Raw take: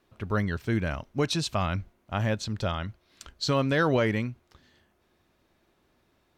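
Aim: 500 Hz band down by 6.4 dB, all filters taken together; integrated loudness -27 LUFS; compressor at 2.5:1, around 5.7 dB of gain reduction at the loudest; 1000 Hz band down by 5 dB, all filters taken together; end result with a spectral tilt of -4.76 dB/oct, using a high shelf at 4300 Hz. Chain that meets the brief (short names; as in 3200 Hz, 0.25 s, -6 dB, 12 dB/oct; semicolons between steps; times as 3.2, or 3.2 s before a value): bell 500 Hz -6.5 dB; bell 1000 Hz -5.5 dB; high shelf 4300 Hz +4 dB; compressor 2.5:1, threshold -31 dBFS; gain +8 dB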